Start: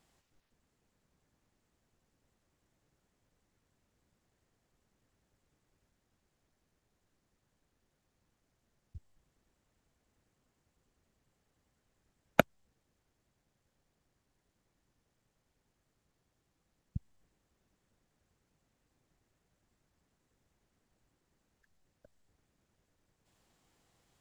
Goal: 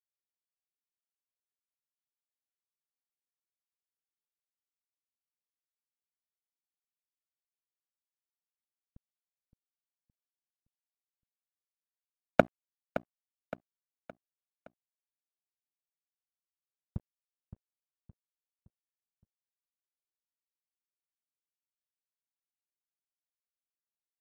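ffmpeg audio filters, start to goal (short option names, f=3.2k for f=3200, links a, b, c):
-filter_complex "[0:a]lowpass=f=1k:p=1,equalizer=f=140:t=o:w=0.34:g=-5,bandreject=f=60:t=h:w=6,bandreject=f=120:t=h:w=6,bandreject=f=180:t=h:w=6,bandreject=f=240:t=h:w=6,bandreject=f=300:t=h:w=6,bandreject=f=360:t=h:w=6,asplit=2[a][b];[b]acontrast=48,volume=-2.5dB[c];[a][c]amix=inputs=2:normalize=0,aeval=exprs='sgn(val(0))*max(abs(val(0))-0.0224,0)':c=same,asplit=2[d][e];[e]aecho=0:1:567|1134|1701|2268:0.224|0.0985|0.0433|0.0191[f];[d][f]amix=inputs=2:normalize=0,volume=-1.5dB"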